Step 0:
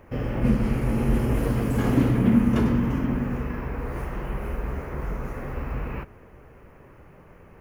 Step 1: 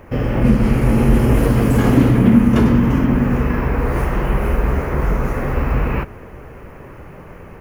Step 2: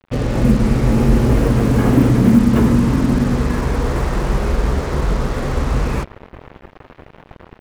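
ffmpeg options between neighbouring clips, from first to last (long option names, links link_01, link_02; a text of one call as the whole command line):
ffmpeg -i in.wav -filter_complex "[0:a]asplit=2[link_01][link_02];[link_02]alimiter=limit=-18dB:level=0:latency=1:release=454,volume=2dB[link_03];[link_01][link_03]amix=inputs=2:normalize=0,dynaudnorm=framelen=270:gausssize=3:maxgain=3.5dB,volume=2dB" out.wav
ffmpeg -i in.wav -af "lowpass=frequency=2200:poles=1,acrusher=bits=4:mix=0:aa=0.5" out.wav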